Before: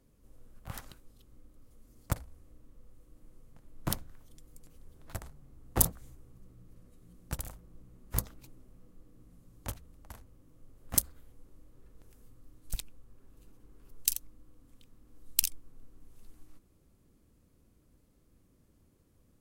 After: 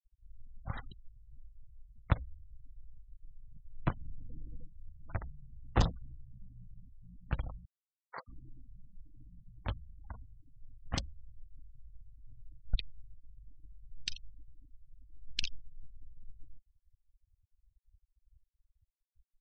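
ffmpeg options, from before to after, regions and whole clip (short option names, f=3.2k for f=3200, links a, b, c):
-filter_complex "[0:a]asettb=1/sr,asplit=3[a][b][c];[a]atrim=end=3.904[d];[b]atrim=start=3.9:end=4.66,asetpts=PTS-STARTPTS,afade=t=in:d=0.004:c=qsin,afade=t=out:st=0.756:d=0.004:c=qsin,acompressor=threshold=-47dB:ratio=12:attack=3.2:release=140:knee=1:detection=peak,aeval=exprs='0.0501*sin(PI/2*1.58*val(0)/0.0501)':c=same[e];[c]atrim=start=4.656[f];[d][e]acrossfade=d=0.004:c1=hsin:c2=qsin[g];[g][f]acrossfade=d=0.004:c1=qsin:c2=hsin,asettb=1/sr,asplit=3[h][i][j];[h]atrim=end=7.654[k];[i]atrim=start=7.65:end=8.28,asetpts=PTS-STARTPTS,afade=t=in:d=0.004:c=qsin,afade=t=out:st=0.626:d=0.004:c=qsin,highpass=680,lowpass=5.5k,equalizer=f=3k:w=2.1:g=-10.5[l];[j]atrim=start=8.276[m];[k][l]acrossfade=d=0.004:c1=hsin:c2=qsin[n];[n][m]acrossfade=d=0.004:c1=qsin:c2=hsin,lowpass=f=4.2k:w=0.5412,lowpass=f=4.2k:w=1.3066,afftfilt=real='re*gte(hypot(re,im),0.00631)':imag='im*gte(hypot(re,im),0.00631)':win_size=1024:overlap=0.75,equalizer=f=350:w=0.49:g=-5,volume=5dB"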